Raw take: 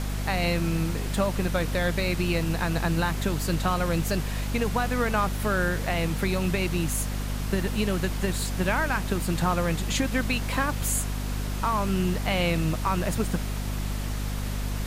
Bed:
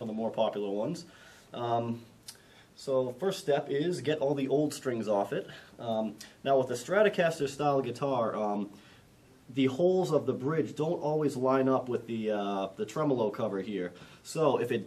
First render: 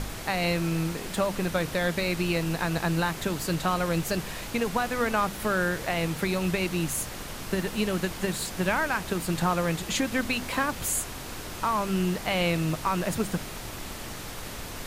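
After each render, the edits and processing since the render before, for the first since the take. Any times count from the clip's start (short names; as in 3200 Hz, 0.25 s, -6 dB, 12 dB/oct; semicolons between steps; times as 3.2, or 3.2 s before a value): de-hum 50 Hz, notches 5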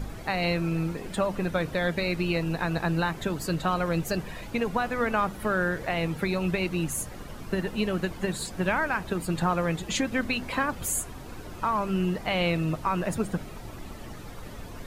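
denoiser 12 dB, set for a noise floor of -38 dBFS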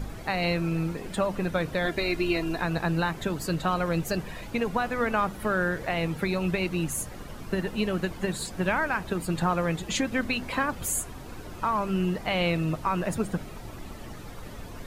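1.85–2.61 comb 2.9 ms, depth 61%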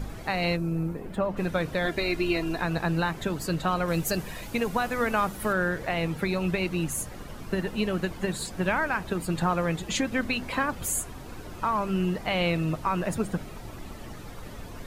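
0.55–1.36 bell 2100 Hz -> 10000 Hz -14 dB 2.8 oct; 3.88–5.53 high shelf 5800 Hz +9.5 dB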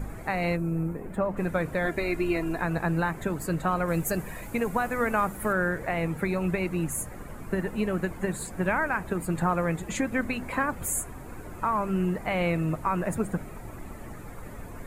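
band shelf 4100 Hz -11 dB 1.3 oct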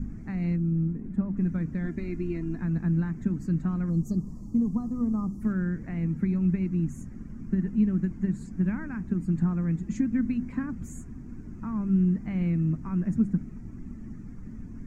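EQ curve 130 Hz 0 dB, 230 Hz +8 dB, 540 Hz -21 dB, 830 Hz -20 dB, 1800 Hz -14 dB, 3800 Hz -21 dB, 5800 Hz -7 dB, 10000 Hz -29 dB; 3.9–5.42 spectral gain 1300–4100 Hz -25 dB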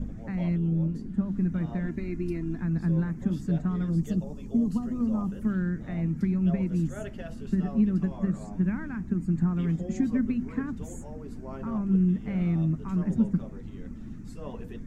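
add bed -15.5 dB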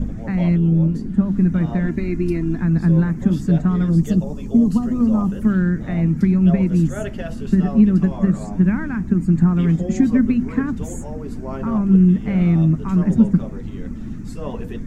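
gain +10.5 dB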